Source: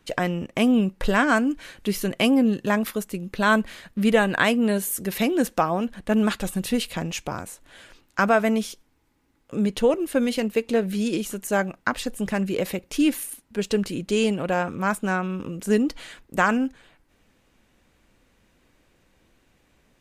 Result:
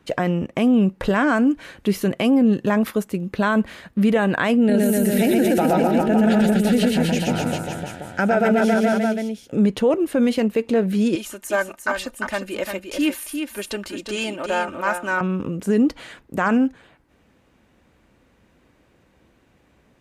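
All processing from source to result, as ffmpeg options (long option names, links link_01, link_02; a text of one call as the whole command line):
ffmpeg -i in.wav -filter_complex "[0:a]asettb=1/sr,asplit=3[link_01][link_02][link_03];[link_01]atrim=end=4.574[link_04];[link_02]atrim=start=4.57:end=9.58,asetpts=PTS-STARTPTS,afade=type=in:duration=0.004:curve=qsin,afade=type=out:start_time=5.006:duration=0.004:curve=qsin,asuperstop=centerf=1100:order=4:qfactor=2.7,aecho=1:1:120|252|397.2|556.9|732.6:0.794|0.631|0.501|0.398|0.316,atrim=end_sample=220941[link_05];[link_03]atrim=start=9.576[link_06];[link_04][link_05]acrossfade=duration=0.004:curve1=hsin:curve2=qsin[link_07];[link_07][link_06]acrossfade=duration=0.004:curve1=qsin:curve2=hsin,asettb=1/sr,asplit=3[link_08][link_09][link_10];[link_08]atrim=end=11.154[link_11];[link_09]atrim=start=11.15:end=15.21,asetpts=PTS-STARTPTS,afade=type=in:duration=0.004:curve=qsin,afade=type=out:start_time=4.056:duration=0.004:curve=qsin,equalizer=frequency=170:width_type=o:width=3:gain=-14.5,aecho=1:1:3.3:0.65,atrim=end_sample=179046,aecho=1:1:350:0.473,atrim=end_sample=179046[link_12];[link_10]atrim=start=15.206[link_13];[link_11][link_12]acrossfade=duration=0.004:curve1=hsin:curve2=qsin[link_14];[link_14][link_13]acrossfade=duration=0.004:curve1=qsin:curve2=hsin,highpass=52,highshelf=frequency=2400:gain=-9,alimiter=limit=-15.5dB:level=0:latency=1:release=21,volume=6dB" out.wav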